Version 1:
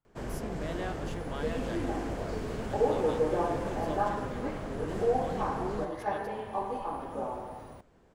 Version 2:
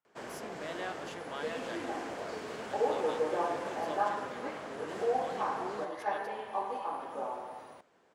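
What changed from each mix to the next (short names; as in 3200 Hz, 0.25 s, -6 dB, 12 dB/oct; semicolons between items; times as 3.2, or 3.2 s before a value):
master: add weighting filter A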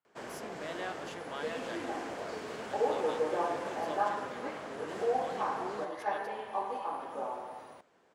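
none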